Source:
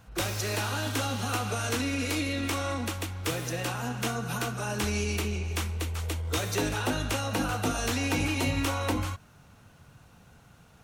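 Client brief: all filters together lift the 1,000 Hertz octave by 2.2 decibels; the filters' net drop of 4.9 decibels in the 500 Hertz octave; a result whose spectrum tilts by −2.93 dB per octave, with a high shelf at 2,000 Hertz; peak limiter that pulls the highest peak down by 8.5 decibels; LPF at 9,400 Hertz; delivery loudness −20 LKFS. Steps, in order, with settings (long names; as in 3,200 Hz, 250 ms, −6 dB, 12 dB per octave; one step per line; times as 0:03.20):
low-pass filter 9,400 Hz
parametric band 500 Hz −7.5 dB
parametric band 1,000 Hz +3 dB
high-shelf EQ 2,000 Hz +7.5 dB
level +10 dB
brickwall limiter −11 dBFS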